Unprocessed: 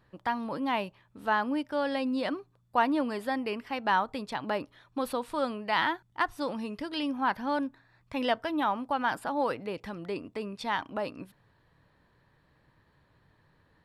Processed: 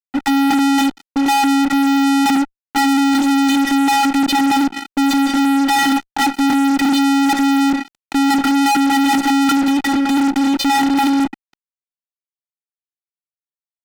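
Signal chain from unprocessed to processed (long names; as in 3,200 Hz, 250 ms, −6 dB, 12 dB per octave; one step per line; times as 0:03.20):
channel vocoder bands 16, square 276 Hz
transient designer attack +6 dB, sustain +10 dB
fuzz pedal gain 53 dB, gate −56 dBFS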